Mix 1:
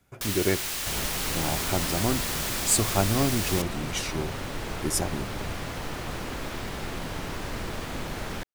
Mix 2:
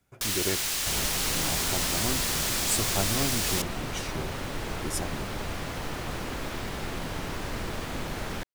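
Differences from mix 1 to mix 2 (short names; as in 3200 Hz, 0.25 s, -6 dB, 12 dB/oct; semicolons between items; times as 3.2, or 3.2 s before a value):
speech -6.0 dB; first sound: add bell 6100 Hz +4 dB 2.1 oct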